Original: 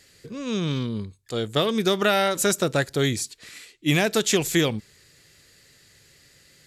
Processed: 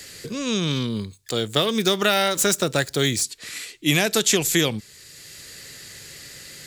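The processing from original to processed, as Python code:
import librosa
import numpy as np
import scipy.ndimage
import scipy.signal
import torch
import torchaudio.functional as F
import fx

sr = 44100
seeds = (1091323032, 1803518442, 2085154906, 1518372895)

y = fx.median_filter(x, sr, points=3, at=(0.88, 3.21), fade=0.02)
y = fx.high_shelf(y, sr, hz=3100.0, db=8.5)
y = fx.band_squash(y, sr, depth_pct=40)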